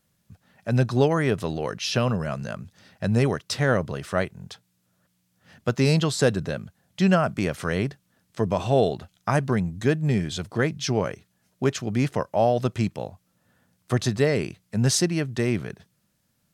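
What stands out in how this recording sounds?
noise floor -71 dBFS; spectral tilt -5.5 dB/oct

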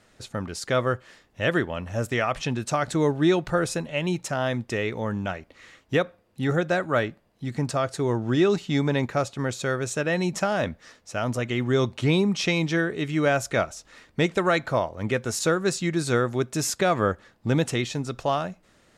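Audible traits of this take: noise floor -61 dBFS; spectral tilt -5.0 dB/oct

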